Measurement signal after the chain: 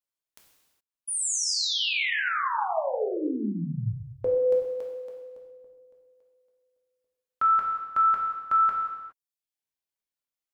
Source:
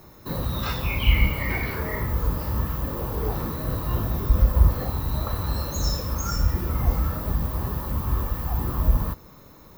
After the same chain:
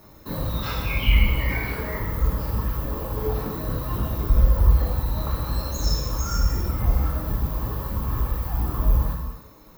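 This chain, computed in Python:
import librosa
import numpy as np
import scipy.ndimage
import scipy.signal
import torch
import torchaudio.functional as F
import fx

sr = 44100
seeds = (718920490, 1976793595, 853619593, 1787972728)

y = fx.dereverb_blind(x, sr, rt60_s=0.79)
y = fx.rev_gated(y, sr, seeds[0], gate_ms=440, shape='falling', drr_db=-2.0)
y = y * 10.0 ** (-2.5 / 20.0)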